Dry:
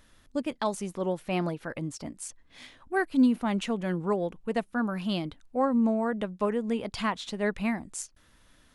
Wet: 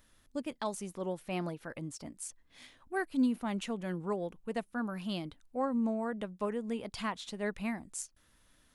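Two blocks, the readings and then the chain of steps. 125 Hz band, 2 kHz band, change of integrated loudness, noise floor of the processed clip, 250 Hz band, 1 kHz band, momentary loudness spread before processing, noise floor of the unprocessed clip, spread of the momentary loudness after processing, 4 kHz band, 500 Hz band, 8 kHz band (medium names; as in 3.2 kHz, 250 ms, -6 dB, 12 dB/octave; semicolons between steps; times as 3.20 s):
-7.0 dB, -6.5 dB, -7.0 dB, -68 dBFS, -7.0 dB, -7.0 dB, 14 LU, -61 dBFS, 12 LU, -6.0 dB, -7.0 dB, -3.0 dB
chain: treble shelf 8.7 kHz +8.5 dB; trim -7 dB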